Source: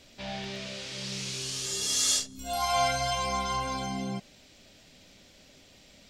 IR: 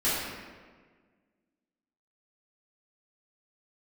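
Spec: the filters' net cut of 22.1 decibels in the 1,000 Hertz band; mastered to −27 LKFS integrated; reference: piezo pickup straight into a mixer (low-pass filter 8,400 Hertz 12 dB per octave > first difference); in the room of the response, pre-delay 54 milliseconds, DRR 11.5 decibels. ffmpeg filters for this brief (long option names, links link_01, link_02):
-filter_complex "[0:a]equalizer=frequency=1000:width_type=o:gain=-5.5,asplit=2[link_01][link_02];[1:a]atrim=start_sample=2205,adelay=54[link_03];[link_02][link_03]afir=irnorm=-1:irlink=0,volume=-23.5dB[link_04];[link_01][link_04]amix=inputs=2:normalize=0,lowpass=8400,aderivative,volume=7.5dB"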